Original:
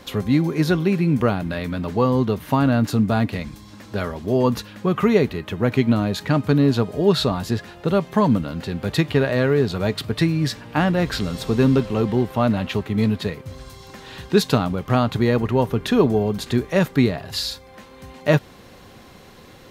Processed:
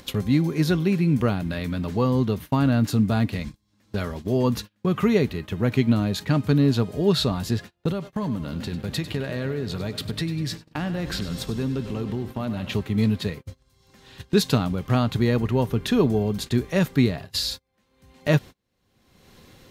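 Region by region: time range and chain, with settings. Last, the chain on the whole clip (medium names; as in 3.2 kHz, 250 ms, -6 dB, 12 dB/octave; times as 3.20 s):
7.92–12.73 s: compression 2:1, threshold -27 dBFS + two-band feedback delay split 330 Hz, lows 307 ms, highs 99 ms, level -12 dB + tape noise reduction on one side only decoder only
whole clip: gate -31 dBFS, range -35 dB; upward compressor, threshold -22 dBFS; peaking EQ 830 Hz -6 dB 2.9 oct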